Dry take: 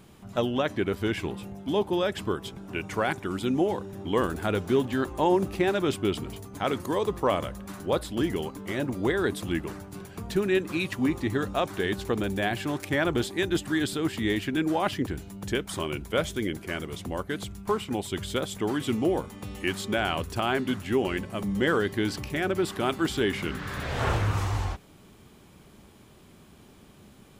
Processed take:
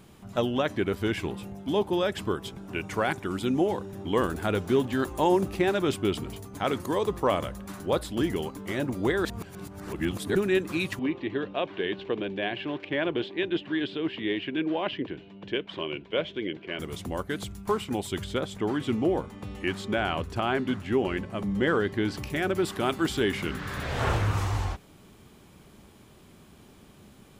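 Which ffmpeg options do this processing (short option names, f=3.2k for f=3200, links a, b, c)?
-filter_complex "[0:a]asettb=1/sr,asplit=3[a][b][c];[a]atrim=end=4.994[d];[b]atrim=start=4.99:end=5.41,asetpts=PTS-STARTPTS,afade=t=in:d=0.004:c=qsin,afade=t=out:st=0.416:d=0.004:c=qsin,highshelf=f=5.8k:g=7[e];[c]atrim=start=5.406[f];[d][e]acrossfade=d=0.004:c1=hsin:c2=qsin[g];[g][f]acrossfade=d=0.004:c1=qsin:c2=hsin,asettb=1/sr,asplit=3[h][i][j];[h]atrim=end=10.994[k];[i]atrim=start=10.99:end=16.79,asetpts=PTS-STARTPTS,afade=t=in:d=0.004:c=qsin,afade=t=out:st=5.796:d=0.004:c=qsin,highpass=210,equalizer=f=230:t=q:w=4:g=-6,equalizer=f=800:t=q:w=4:g=-6,equalizer=f=1.3k:t=q:w=4:g=-9,equalizer=f=1.9k:t=q:w=4:g=-3,equalizer=f=2.9k:t=q:w=4:g=5,lowpass=f=3.3k:w=0.5412,lowpass=f=3.3k:w=1.3066[l];[j]atrim=start=16.786[m];[k][l]acrossfade=d=0.004:c1=hsin:c2=qsin[n];[n][m]acrossfade=d=0.004:c1=qsin:c2=hsin,asettb=1/sr,asplit=3[o][p][q];[o]atrim=end=18.244[r];[p]atrim=start=18.24:end=22.16,asetpts=PTS-STARTPTS,afade=t=in:d=0.004:c=qsin,afade=t=out:st=3.916:d=0.004:c=qsin,aemphasis=mode=reproduction:type=50kf[s];[q]atrim=start=22.156[t];[r][s]acrossfade=d=0.004:c1=hsin:c2=qsin[u];[u][t]acrossfade=d=0.004:c1=qsin:c2=hsin,asplit=3[v][w][x];[v]atrim=end=9.252[y];[w]atrim=start=9.248:end=10.352,asetpts=PTS-STARTPTS,areverse[z];[x]atrim=start=10.348[aa];[y][z]acrossfade=d=0.004:c1=hsin:c2=hsin[ab];[ab][aa]acrossfade=d=0.004:c1=hsin:c2=hsin"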